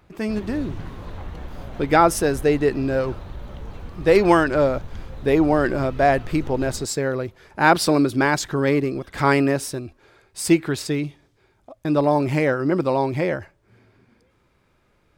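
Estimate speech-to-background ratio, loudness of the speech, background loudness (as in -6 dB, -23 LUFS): 17.0 dB, -21.0 LUFS, -38.0 LUFS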